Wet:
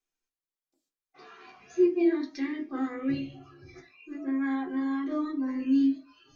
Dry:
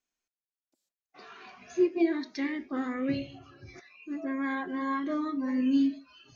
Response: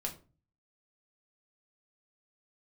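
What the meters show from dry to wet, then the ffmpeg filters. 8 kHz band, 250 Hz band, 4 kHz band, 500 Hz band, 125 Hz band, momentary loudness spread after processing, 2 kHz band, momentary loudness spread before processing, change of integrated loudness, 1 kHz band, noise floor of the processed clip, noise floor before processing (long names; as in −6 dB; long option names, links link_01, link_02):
can't be measured, +1.5 dB, −3.0 dB, +2.0 dB, +0.5 dB, 13 LU, −3.0 dB, 22 LU, +1.5 dB, −3.5 dB, below −85 dBFS, below −85 dBFS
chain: -filter_complex "[1:a]atrim=start_sample=2205,asetrate=83790,aresample=44100[link_01];[0:a][link_01]afir=irnorm=-1:irlink=0,volume=2.5dB"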